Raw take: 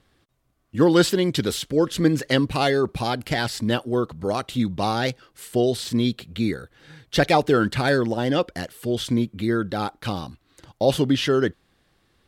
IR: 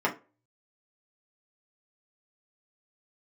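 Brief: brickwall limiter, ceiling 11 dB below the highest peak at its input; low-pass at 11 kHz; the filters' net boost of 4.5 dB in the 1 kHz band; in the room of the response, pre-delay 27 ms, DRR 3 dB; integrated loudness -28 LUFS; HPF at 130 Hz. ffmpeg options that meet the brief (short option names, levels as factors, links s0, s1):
-filter_complex "[0:a]highpass=130,lowpass=11000,equalizer=f=1000:t=o:g=6.5,alimiter=limit=0.224:level=0:latency=1,asplit=2[s0][s1];[1:a]atrim=start_sample=2205,adelay=27[s2];[s1][s2]afir=irnorm=-1:irlink=0,volume=0.178[s3];[s0][s3]amix=inputs=2:normalize=0,volume=0.562"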